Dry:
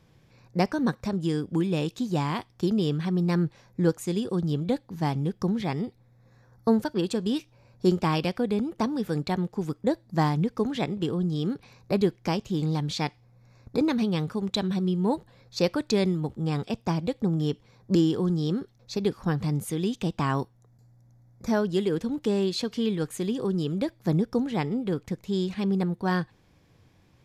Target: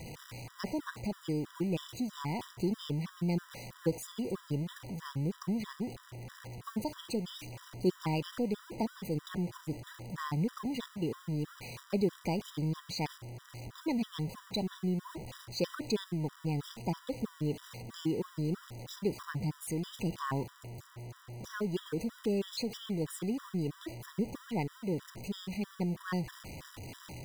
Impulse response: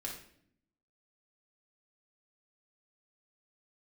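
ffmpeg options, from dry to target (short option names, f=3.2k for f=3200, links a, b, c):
-af "aeval=exprs='val(0)+0.5*0.0266*sgn(val(0))':c=same,acrusher=bits=8:mode=log:mix=0:aa=0.000001,afftfilt=real='re*gt(sin(2*PI*3.1*pts/sr)*(1-2*mod(floor(b*sr/1024/980),2)),0)':imag='im*gt(sin(2*PI*3.1*pts/sr)*(1-2*mod(floor(b*sr/1024/980),2)),0)':win_size=1024:overlap=0.75,volume=-7dB"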